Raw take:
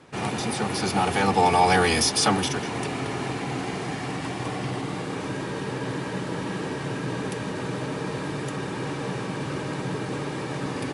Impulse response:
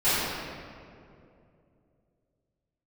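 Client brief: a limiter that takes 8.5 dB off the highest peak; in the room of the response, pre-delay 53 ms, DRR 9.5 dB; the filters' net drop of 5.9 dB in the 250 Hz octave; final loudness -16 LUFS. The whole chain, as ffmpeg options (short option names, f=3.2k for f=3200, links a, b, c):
-filter_complex "[0:a]equalizer=f=250:t=o:g=-8.5,alimiter=limit=-17dB:level=0:latency=1,asplit=2[a][b];[1:a]atrim=start_sample=2205,adelay=53[c];[b][c]afir=irnorm=-1:irlink=0,volume=-26.5dB[d];[a][d]amix=inputs=2:normalize=0,volume=14dB"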